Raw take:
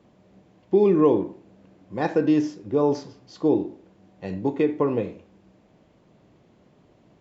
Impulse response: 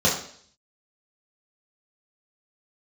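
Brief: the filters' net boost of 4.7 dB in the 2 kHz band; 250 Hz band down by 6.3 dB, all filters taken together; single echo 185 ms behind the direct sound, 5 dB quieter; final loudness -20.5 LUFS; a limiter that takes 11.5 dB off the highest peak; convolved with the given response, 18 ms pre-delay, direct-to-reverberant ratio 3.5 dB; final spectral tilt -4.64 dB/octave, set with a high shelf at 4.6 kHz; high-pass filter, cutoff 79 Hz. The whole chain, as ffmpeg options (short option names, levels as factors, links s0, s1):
-filter_complex "[0:a]highpass=79,equalizer=f=250:t=o:g=-9,equalizer=f=2000:t=o:g=7,highshelf=f=4600:g=-6.5,alimiter=limit=0.0891:level=0:latency=1,aecho=1:1:185:0.562,asplit=2[s0][s1];[1:a]atrim=start_sample=2205,adelay=18[s2];[s1][s2]afir=irnorm=-1:irlink=0,volume=0.1[s3];[s0][s3]amix=inputs=2:normalize=0,volume=2.51"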